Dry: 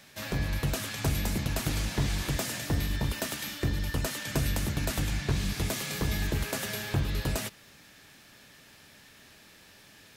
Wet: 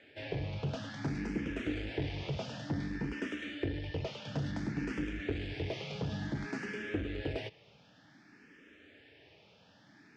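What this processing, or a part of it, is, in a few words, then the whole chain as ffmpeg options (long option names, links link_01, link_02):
barber-pole phaser into a guitar amplifier: -filter_complex "[0:a]asplit=2[link_01][link_02];[link_02]afreqshift=0.56[link_03];[link_01][link_03]amix=inputs=2:normalize=1,asoftclip=type=tanh:threshold=-27dB,highpass=81,equalizer=frequency=300:width_type=q:width=4:gain=8,equalizer=frequency=450:width_type=q:width=4:gain=6,equalizer=frequency=1100:width_type=q:width=4:gain=-8,equalizer=frequency=4000:width_type=q:width=4:gain=-9,lowpass=frequency=4300:width=0.5412,lowpass=frequency=4300:width=1.3066,volume=-1dB"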